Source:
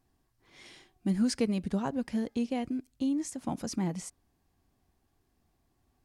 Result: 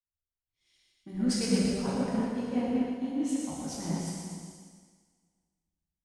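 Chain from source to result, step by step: bass shelf 64 Hz +6.5 dB; thinning echo 119 ms, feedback 62%, high-pass 420 Hz, level -5.5 dB; plate-style reverb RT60 3.4 s, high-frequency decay 0.95×, DRR -6.5 dB; three bands expanded up and down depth 100%; trim -7 dB

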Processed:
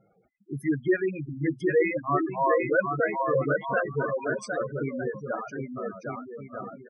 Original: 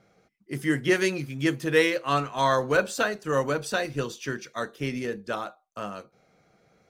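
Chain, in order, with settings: bouncing-ball echo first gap 760 ms, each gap 0.65×, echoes 5; reverb removal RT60 0.51 s; spectral gate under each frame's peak -10 dB strong

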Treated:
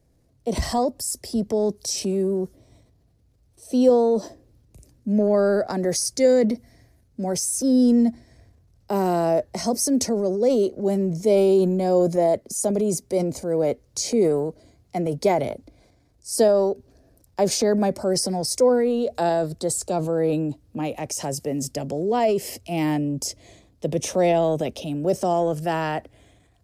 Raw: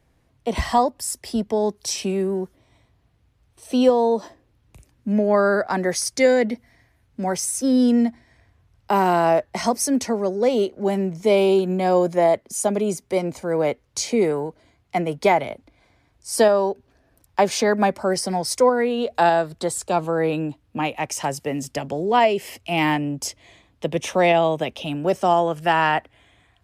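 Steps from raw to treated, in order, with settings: high-order bell 1.7 kHz -11 dB 2.4 oct; transient shaper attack -1 dB, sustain +6 dB

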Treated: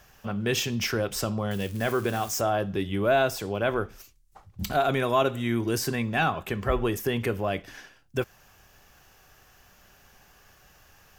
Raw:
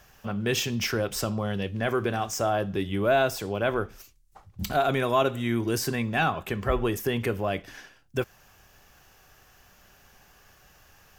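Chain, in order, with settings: 1.51–2.41 s: zero-crossing glitches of -31.5 dBFS

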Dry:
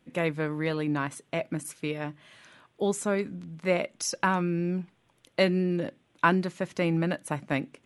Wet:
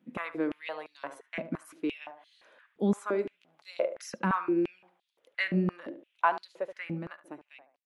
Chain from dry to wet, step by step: fade out at the end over 1.77 s; peaking EQ 8 kHz -9.5 dB 2 oct; tape echo 73 ms, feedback 41%, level -10 dB, low-pass 1.3 kHz; step-sequenced high-pass 5.8 Hz 210–4200 Hz; trim -6.5 dB

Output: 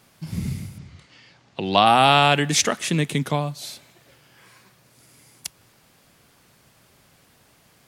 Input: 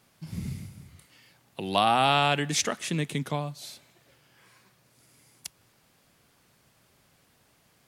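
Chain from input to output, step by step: 0.78–1.86 s: low-pass 6.3 kHz 24 dB/octave; trim +7 dB

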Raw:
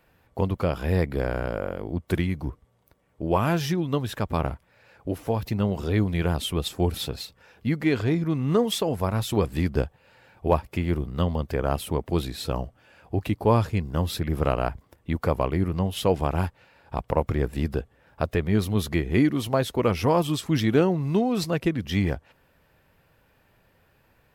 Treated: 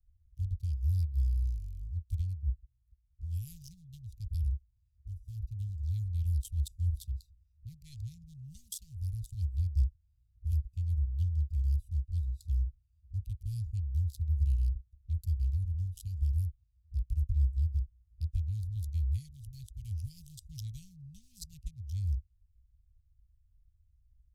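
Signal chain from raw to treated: local Wiener filter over 41 samples; inverse Chebyshev band-stop 320–1400 Hz, stop band 80 dB; tone controls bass +1 dB, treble -7 dB; trim +5.5 dB

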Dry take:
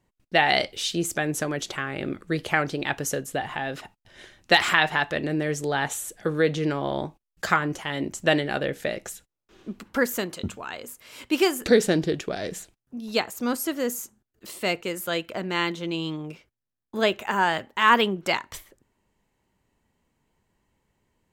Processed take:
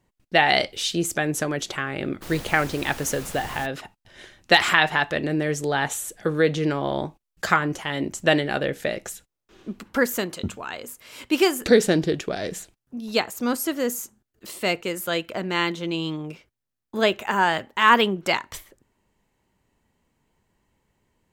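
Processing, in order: 2.21–3.65 s: added noise pink -40 dBFS; trim +2 dB

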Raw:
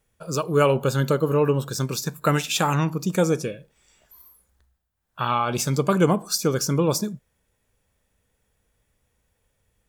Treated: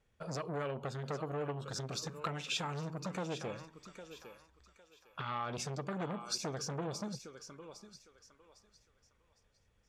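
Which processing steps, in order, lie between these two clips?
low-pass 5.1 kHz 12 dB/octave; compression 10:1, threshold -28 dBFS, peak gain reduction 15.5 dB; on a send: thinning echo 806 ms, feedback 32%, high-pass 570 Hz, level -10.5 dB; on the sum: transformer saturation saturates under 1.4 kHz; trim -3.5 dB

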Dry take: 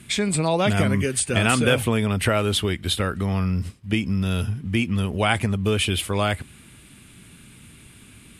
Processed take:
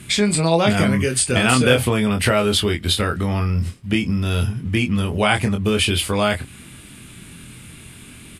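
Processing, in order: dynamic bell 4.7 kHz, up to +6 dB, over -50 dBFS, Q 5.6; in parallel at -2.5 dB: compression, threshold -30 dBFS, peak gain reduction 15 dB; on the sum: doubling 24 ms -5 dB; trim +1 dB

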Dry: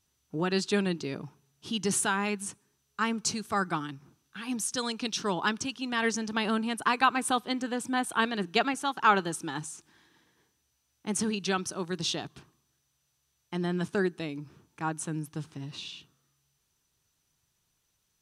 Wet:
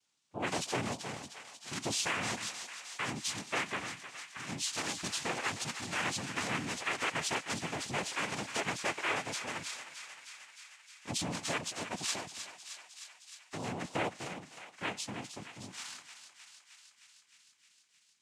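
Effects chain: knee-point frequency compression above 2.2 kHz 1.5:1; bass shelf 500 Hz -10 dB; peak limiter -22.5 dBFS, peak gain reduction 10.5 dB; noise-vocoded speech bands 4; thinning echo 309 ms, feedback 76%, high-pass 880 Hz, level -9.5 dB; trim -1 dB

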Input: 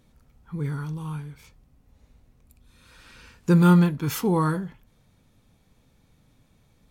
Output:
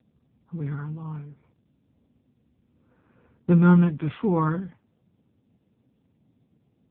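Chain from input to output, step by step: level-controlled noise filter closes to 650 Hz, open at -19 dBFS; AMR-NB 5.9 kbps 8 kHz

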